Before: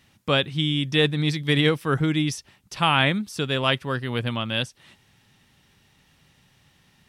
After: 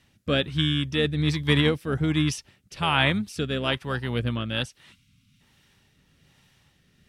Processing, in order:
time-frequency box erased 0:04.92–0:05.40, 280–2,000 Hz
pitch-shifted copies added −12 semitones −12 dB
rotating-speaker cabinet horn 1.2 Hz

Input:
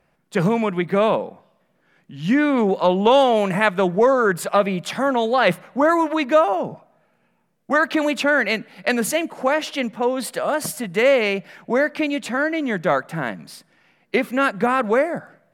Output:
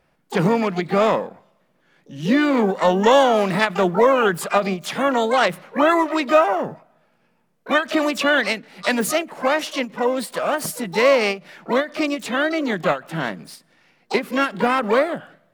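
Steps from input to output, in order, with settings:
floating-point word with a short mantissa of 6 bits
pitch-shifted copies added +3 semitones −15 dB, +12 semitones −10 dB
every ending faded ahead of time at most 230 dB per second

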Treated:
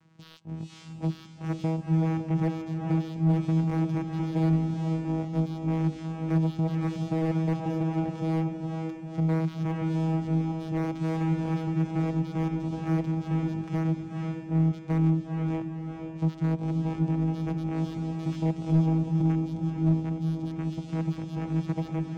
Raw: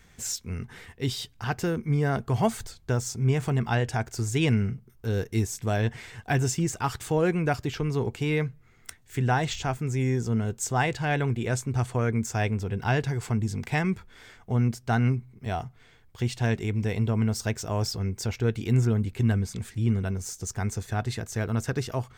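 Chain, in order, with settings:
channel vocoder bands 4, saw 161 Hz
feedback delay with all-pass diffusion 469 ms, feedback 47%, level −5 dB
slew-rate limiting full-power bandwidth 28 Hz

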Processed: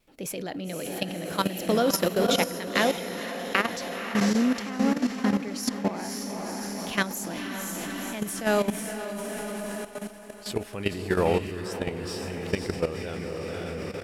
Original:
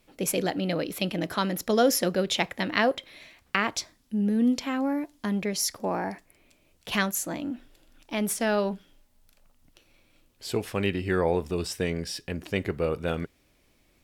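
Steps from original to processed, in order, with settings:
pitch vibrato 1.4 Hz 19 cents
feedback delay with all-pass diffusion 518 ms, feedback 63%, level −3.5 dB
output level in coarse steps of 12 dB
level +2.5 dB

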